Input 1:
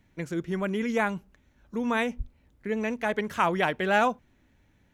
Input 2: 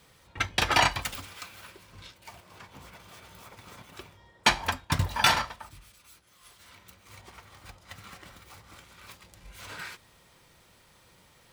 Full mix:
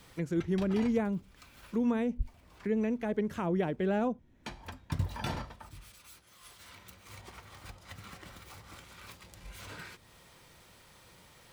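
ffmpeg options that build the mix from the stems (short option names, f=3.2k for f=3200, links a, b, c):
-filter_complex "[0:a]volume=1dB,asplit=2[a][b];[1:a]volume=1.5dB[c];[b]apad=whole_len=508035[d];[c][d]sidechaincompress=threshold=-38dB:ratio=8:attack=40:release=1000[e];[a][e]amix=inputs=2:normalize=0,acrossover=split=490[f][g];[g]acompressor=threshold=-49dB:ratio=2.5[h];[f][h]amix=inputs=2:normalize=0"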